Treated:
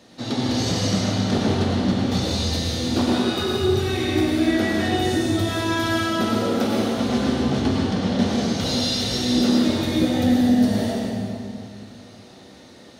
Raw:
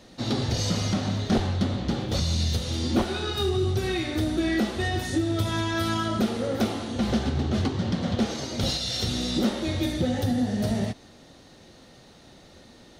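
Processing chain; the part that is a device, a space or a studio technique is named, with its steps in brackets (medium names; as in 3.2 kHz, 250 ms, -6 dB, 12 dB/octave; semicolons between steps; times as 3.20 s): high-pass 100 Hz; stairwell (reverberation RT60 2.3 s, pre-delay 90 ms, DRR -3 dB); two-slope reverb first 0.55 s, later 1.9 s, DRR 7 dB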